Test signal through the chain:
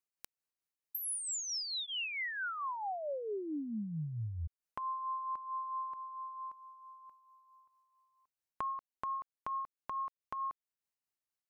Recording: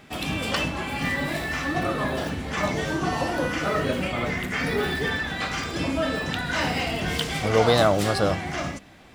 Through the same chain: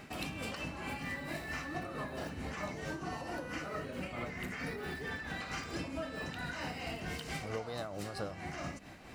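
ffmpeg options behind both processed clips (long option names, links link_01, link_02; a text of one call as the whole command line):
ffmpeg -i in.wav -af "bandreject=frequency=3400:width=7.3,acompressor=threshold=-35dB:ratio=12,tremolo=f=4.5:d=0.45" out.wav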